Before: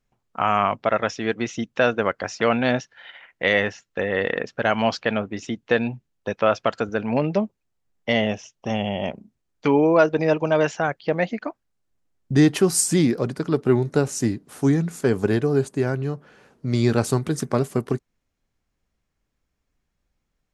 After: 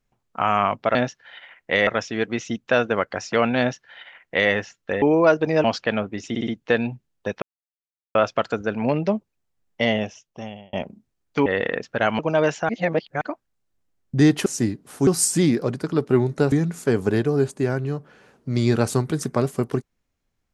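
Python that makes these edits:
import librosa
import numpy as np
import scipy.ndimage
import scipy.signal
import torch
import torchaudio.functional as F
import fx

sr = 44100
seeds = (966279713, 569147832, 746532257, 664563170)

y = fx.edit(x, sr, fx.duplicate(start_s=2.67, length_s=0.92, to_s=0.95),
    fx.swap(start_s=4.1, length_s=0.73, other_s=9.74, other_length_s=0.62),
    fx.stutter(start_s=5.48, slice_s=0.06, count=4),
    fx.insert_silence(at_s=6.43, length_s=0.73),
    fx.fade_out_span(start_s=8.18, length_s=0.83),
    fx.reverse_span(start_s=10.86, length_s=0.52),
    fx.move(start_s=14.08, length_s=0.61, to_s=12.63), tone=tone)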